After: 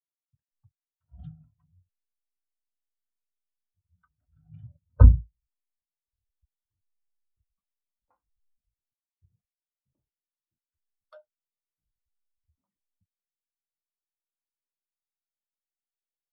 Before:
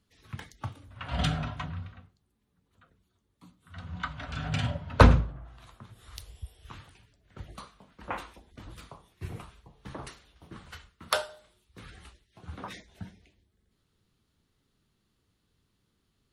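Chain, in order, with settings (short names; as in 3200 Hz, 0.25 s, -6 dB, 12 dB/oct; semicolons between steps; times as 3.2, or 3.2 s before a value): level-crossing sampler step -38 dBFS; spectral expander 2.5:1; gain +1.5 dB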